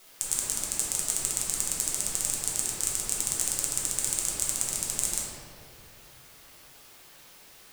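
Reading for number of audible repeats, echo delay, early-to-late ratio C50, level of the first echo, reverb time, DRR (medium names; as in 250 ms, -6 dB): no echo, no echo, -1.0 dB, no echo, 2.6 s, -5.5 dB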